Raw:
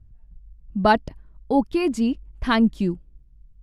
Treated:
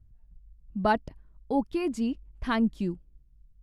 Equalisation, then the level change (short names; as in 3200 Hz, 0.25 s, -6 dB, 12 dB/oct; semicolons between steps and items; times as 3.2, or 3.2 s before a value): dynamic EQ 4200 Hz, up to -4 dB, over -37 dBFS, Q 0.96; -7.0 dB